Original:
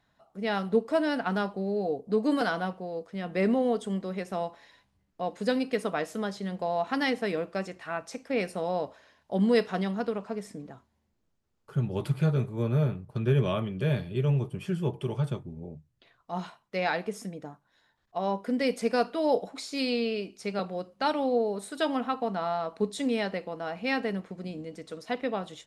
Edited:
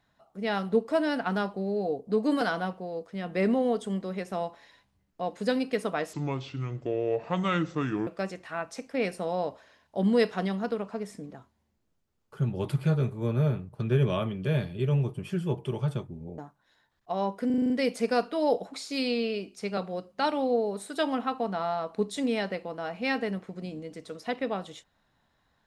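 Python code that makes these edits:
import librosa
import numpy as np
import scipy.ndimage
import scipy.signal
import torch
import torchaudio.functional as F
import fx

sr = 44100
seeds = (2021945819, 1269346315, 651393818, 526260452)

y = fx.edit(x, sr, fx.speed_span(start_s=6.13, length_s=1.3, speed=0.67),
    fx.cut(start_s=15.74, length_s=1.7),
    fx.stutter(start_s=18.52, slice_s=0.04, count=7), tone=tone)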